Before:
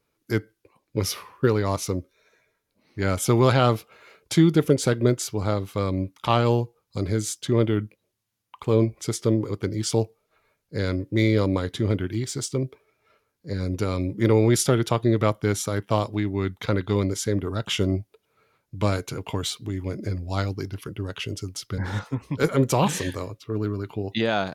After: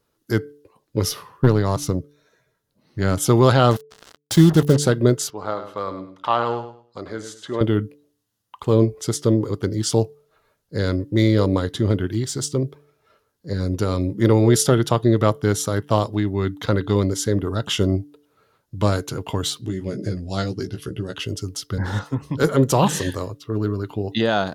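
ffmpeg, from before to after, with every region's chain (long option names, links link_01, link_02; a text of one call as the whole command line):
ffmpeg -i in.wav -filter_complex "[0:a]asettb=1/sr,asplit=3[link_01][link_02][link_03];[link_01]atrim=end=1.094[link_04];[link_02]atrim=start=1.09:end=3.21,asetpts=PTS-STARTPTS,afade=type=in:duration=0.004:curve=qsin,afade=type=out:start_time=2.116:duration=0.004:curve=qsin,equalizer=frequency=140:width_type=o:width=0.69:gain=11,aeval=exprs='(tanh(3.16*val(0)+0.55)-tanh(0.55))/3.16':channel_layout=same[link_05];[link_03]atrim=start=3.206[link_06];[link_04][link_05]acrossfade=duration=0.004:curve1=hsin:curve2=qsin[link_07];[link_07][link_06]acrossfade=duration=0.004:curve1=qsin:curve2=hsin,asettb=1/sr,asplit=3[link_08][link_09][link_10];[link_08]atrim=end=3.714[link_11];[link_09]atrim=start=3.71:end=4.77,asetpts=PTS-STARTPTS,afade=type=in:duration=0.004:curve=qsin,afade=type=out:start_time=1.056:duration=0.004:curve=qsin,asubboost=boost=6.5:cutoff=170,acompressor=mode=upward:threshold=-27dB:ratio=2.5:attack=3.2:release=140:knee=2.83:detection=peak,acrusher=bits=4:mix=0:aa=0.5[link_12];[link_10]atrim=start=4.766[link_13];[link_11][link_12]acrossfade=duration=0.004:curve1=hsin:curve2=qsin[link_14];[link_14][link_13]acrossfade=duration=0.004:curve1=qsin:curve2=hsin,asettb=1/sr,asplit=3[link_15][link_16][link_17];[link_15]atrim=end=5.304[link_18];[link_16]atrim=start=5.3:end=7.61,asetpts=PTS-STARTPTS,afade=type=in:duration=0.004:curve=qsin,afade=type=out:start_time=2.306:duration=0.004:curve=qsin,bandpass=frequency=1200:width_type=q:width=0.78,aecho=1:1:102|204|306:0.316|0.0759|0.0182,atrim=end_sample=101871[link_19];[link_17]atrim=start=7.606[link_20];[link_18][link_19]acrossfade=duration=0.004:curve1=hsin:curve2=qsin[link_21];[link_21][link_20]acrossfade=duration=0.004:curve1=qsin:curve2=hsin,asettb=1/sr,asplit=3[link_22][link_23][link_24];[link_22]atrim=end=19.614[link_25];[link_23]atrim=start=19.61:end=21.17,asetpts=PTS-STARTPTS,afade=type=in:duration=0.004:curve=qsin,afade=type=out:start_time=1.556:duration=0.004:curve=qsin,lowpass=frequency=11000:width=0.5412,lowpass=frequency=11000:width=1.3066,equalizer=frequency=990:width_type=o:width=0.67:gain=-9.5,asplit=2[link_26][link_27];[link_27]adelay=16,volume=-5dB[link_28];[link_26][link_28]amix=inputs=2:normalize=0,atrim=end_sample=68796[link_29];[link_24]atrim=start=21.166[link_30];[link_25][link_29]acrossfade=duration=0.004:curve1=hsin:curve2=qsin[link_31];[link_31][link_30]acrossfade=duration=0.004:curve1=qsin:curve2=hsin,equalizer=frequency=2300:width_type=o:width=0.22:gain=-12,bandreject=frequency=146:width_type=h:width=4,bandreject=frequency=292:width_type=h:width=4,bandreject=frequency=438:width_type=h:width=4,volume=4dB" out.wav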